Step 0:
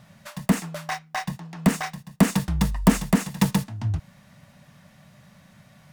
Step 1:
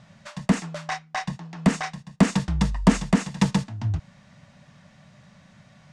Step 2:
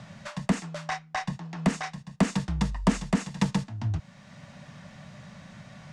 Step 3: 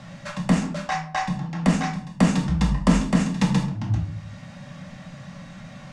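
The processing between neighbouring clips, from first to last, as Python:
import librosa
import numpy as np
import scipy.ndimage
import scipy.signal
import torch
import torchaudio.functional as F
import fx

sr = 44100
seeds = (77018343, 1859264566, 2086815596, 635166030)

y1 = scipy.signal.sosfilt(scipy.signal.butter(4, 7700.0, 'lowpass', fs=sr, output='sos'), x)
y2 = fx.band_squash(y1, sr, depth_pct=40)
y2 = y2 * librosa.db_to_amplitude(-4.0)
y3 = fx.room_shoebox(y2, sr, seeds[0], volume_m3=550.0, walls='furnished', distance_m=2.2)
y3 = y3 * librosa.db_to_amplitude(2.0)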